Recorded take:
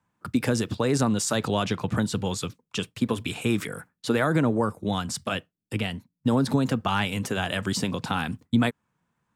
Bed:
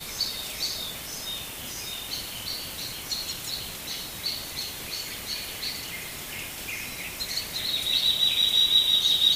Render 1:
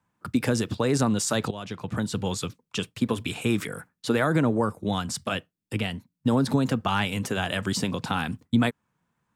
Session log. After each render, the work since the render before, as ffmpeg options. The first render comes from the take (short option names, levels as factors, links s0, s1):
-filter_complex "[0:a]asplit=2[s0][s1];[s0]atrim=end=1.51,asetpts=PTS-STARTPTS,afade=t=out:st=1.506:d=0.004:c=hsin:silence=0.177828[s2];[s1]atrim=start=1.51,asetpts=PTS-STARTPTS,afade=t=in:d=0.77:silence=0.177828[s3];[s2][s3]concat=n=2:v=0:a=1"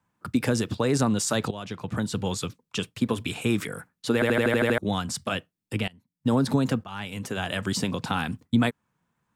-filter_complex "[0:a]asplit=11[s0][s1][s2][s3][s4][s5][s6][s7][s8][s9][s10];[s0]atrim=end=4.222[s11];[s1]atrim=start=4.138:end=4.222[s12];[s2]atrim=start=4.138:end=4.222[s13];[s3]atrim=start=4.138:end=4.222[s14];[s4]atrim=start=4.138:end=4.222[s15];[s5]atrim=start=4.138:end=4.222[s16];[s6]atrim=start=4.138:end=4.222[s17];[s7]atrim=start=4.138:end=4.222[s18];[s8]atrim=start=4.778:end=5.88,asetpts=PTS-STARTPTS,afade=t=out:st=1.098:d=0.004:c=hsin:silence=0.0841395[s19];[s9]atrim=start=5.88:end=6.84,asetpts=PTS-STARTPTS,afade=t=in:d=0.42:c=qua:silence=0.0841395,afade=t=out:st=0.956:d=0.004:c=hsin:silence=0.133352[s20];[s10]atrim=start=6.84,asetpts=PTS-STARTPTS,afade=t=in:d=1.09:c=qsin:silence=0.133352[s21];[s11][s12]acrossfade=d=0.004:c1=hsin:c2=hsin[s22];[s22][s13]acrossfade=d=0.004:c1=hsin:c2=hsin[s23];[s23][s14]acrossfade=d=0.004:c1=hsin:c2=hsin[s24];[s24][s15]acrossfade=d=0.004:c1=hsin:c2=hsin[s25];[s25][s16]acrossfade=d=0.004:c1=hsin:c2=hsin[s26];[s26][s17]acrossfade=d=0.004:c1=hsin:c2=hsin[s27];[s27][s18]acrossfade=d=0.004:c1=hsin:c2=hsin[s28];[s19][s20][s21]concat=n=3:v=0:a=1[s29];[s28][s29]acrossfade=d=0.004:c1=hsin:c2=hsin"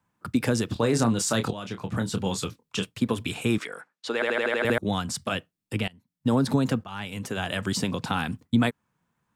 -filter_complex "[0:a]asettb=1/sr,asplit=3[s0][s1][s2];[s0]atrim=end=0.734[s3];[s1]atrim=start=0.73:end=2.85,asetpts=PTS-STARTPTS,afade=t=in:d=0.004:c=qsin,afade=t=out:st=2.116:d=0.004:c=qsin,asplit=2[s4][s5];[s5]adelay=26,volume=0.398[s6];[s4][s6]amix=inputs=2:normalize=0,atrim=end_sample=93492[s7];[s2]atrim=start=2.846[s8];[s3][s7]acrossfade=d=0.004:c1=hsin:c2=qsin[s9];[s9][s8]acrossfade=d=0.004:c1=qsin:c2=hsin,asettb=1/sr,asplit=3[s10][s11][s12];[s10]atrim=end=3.584[s13];[s11]atrim=start=3.58:end=4.65,asetpts=PTS-STARTPTS,afade=t=in:d=0.004:c=qsin,afade=t=out:st=1.066:d=0.004:c=qsin,highpass=460,lowpass=6200[s14];[s12]atrim=start=4.646[s15];[s13][s14]acrossfade=d=0.004:c1=hsin:c2=qsin[s16];[s16][s15]acrossfade=d=0.004:c1=qsin:c2=hsin"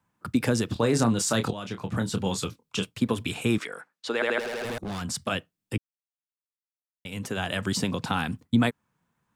-filter_complex "[0:a]asettb=1/sr,asplit=3[s0][s1][s2];[s0]atrim=end=2.474[s3];[s1]atrim=start=2.47:end=2.95,asetpts=PTS-STARTPTS,afade=t=in:d=0.004:c=qsin,afade=t=out:st=0.476:d=0.004:c=qsin,bandreject=f=1800:w=10[s4];[s2]atrim=start=2.946[s5];[s3][s4]acrossfade=d=0.004:c1=hsin:c2=qsin[s6];[s6][s5]acrossfade=d=0.004:c1=qsin:c2=hsin,asettb=1/sr,asplit=3[s7][s8][s9];[s7]atrim=end=4.394[s10];[s8]atrim=start=4.39:end=5.02,asetpts=PTS-STARTPTS,afade=t=in:d=0.004:c=qsin,afade=t=out:st=0.626:d=0.004:c=qsin,volume=33.5,asoftclip=hard,volume=0.0299[s11];[s9]atrim=start=5.016[s12];[s10][s11]acrossfade=d=0.004:c1=hsin:c2=qsin[s13];[s13][s12]acrossfade=d=0.004:c1=qsin:c2=hsin,asplit=3[s14][s15][s16];[s14]atrim=end=5.78,asetpts=PTS-STARTPTS,afade=t=out:st=5.776:d=0.004:c=hsin[s17];[s15]atrim=start=5.78:end=7.05,asetpts=PTS-STARTPTS,volume=0[s18];[s16]atrim=start=7.05,asetpts=PTS-STARTPTS,afade=t=in:d=0.004:c=hsin[s19];[s17][s18][s19]concat=n=3:v=0:a=1"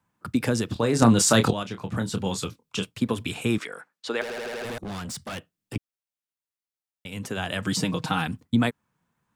-filter_complex "[0:a]asettb=1/sr,asplit=3[s0][s1][s2];[s0]atrim=end=4.214[s3];[s1]atrim=start=4.21:end=5.76,asetpts=PTS-STARTPTS,afade=t=in:d=0.004:c=qsin,afade=t=out:st=1.546:d=0.004:c=qsin,volume=37.6,asoftclip=hard,volume=0.0266[s4];[s2]atrim=start=5.756[s5];[s3][s4]acrossfade=d=0.004:c1=hsin:c2=qsin[s6];[s6][s5]acrossfade=d=0.004:c1=qsin:c2=hsin,asettb=1/sr,asplit=3[s7][s8][s9];[s7]atrim=end=7.654[s10];[s8]atrim=start=7.65:end=8.27,asetpts=PTS-STARTPTS,afade=t=in:d=0.004:c=qsin,afade=t=out:st=0.616:d=0.004:c=qsin,aecho=1:1:6.4:0.69,atrim=end_sample=27342[s11];[s9]atrim=start=8.266[s12];[s10][s11]acrossfade=d=0.004:c1=hsin:c2=qsin[s13];[s13][s12]acrossfade=d=0.004:c1=qsin:c2=hsin,asplit=3[s14][s15][s16];[s14]atrim=end=1.022[s17];[s15]atrim=start=1.018:end=1.632,asetpts=PTS-STARTPTS,volume=2.11[s18];[s16]atrim=start=1.628[s19];[s17][s18]acrossfade=d=0.004:c1=hsin:c2=hsin[s20];[s20][s19]acrossfade=d=0.004:c1=hsin:c2=hsin"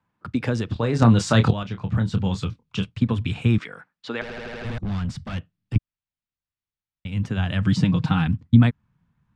-af "lowpass=3900,asubboost=boost=7:cutoff=160"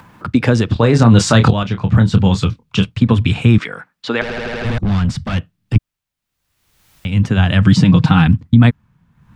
-af "acompressor=mode=upward:threshold=0.0112:ratio=2.5,alimiter=level_in=3.55:limit=0.891:release=50:level=0:latency=1"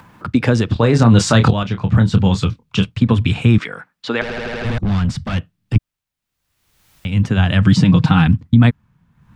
-af "volume=0.841"